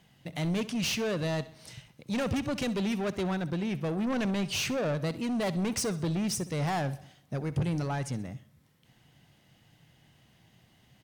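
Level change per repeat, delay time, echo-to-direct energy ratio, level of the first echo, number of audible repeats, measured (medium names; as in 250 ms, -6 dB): -6.5 dB, 65 ms, -16.0 dB, -17.0 dB, 3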